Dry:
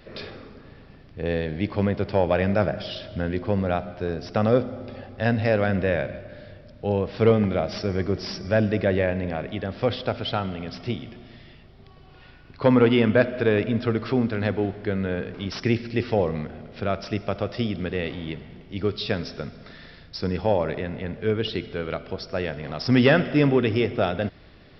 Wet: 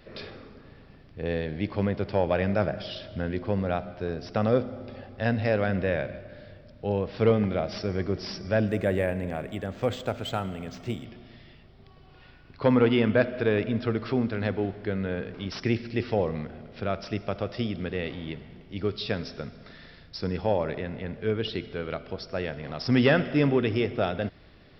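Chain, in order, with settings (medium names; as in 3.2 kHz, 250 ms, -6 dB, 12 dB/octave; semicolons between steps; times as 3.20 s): 8.68–11.05 s: decimation joined by straight lines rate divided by 4×; trim -3.5 dB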